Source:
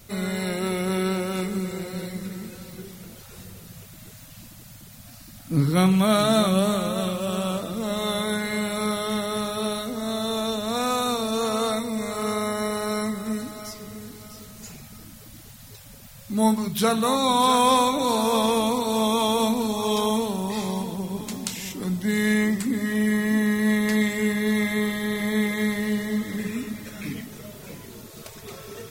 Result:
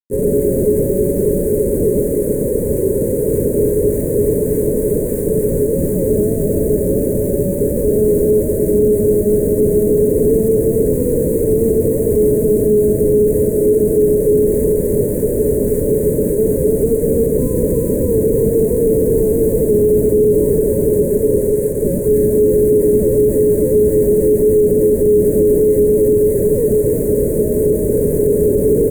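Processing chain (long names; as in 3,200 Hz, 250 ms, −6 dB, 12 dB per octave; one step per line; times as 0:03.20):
camcorder AGC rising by 19 dB per second
sample-and-hold swept by an LFO 34×, swing 160% 1.7 Hz
Chebyshev high-pass with heavy ripple 410 Hz, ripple 6 dB
high-frequency loss of the air 480 metres
multi-tap delay 41/141/226/286/338 ms −12/−16.5/−16.5/−6/−7 dB
fuzz pedal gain 45 dB, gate −43 dBFS
inverse Chebyshev band-stop filter 710–5,400 Hz, stop band 40 dB
high-shelf EQ 2,500 Hz −10 dB
boost into a limiter +16 dB
level −4 dB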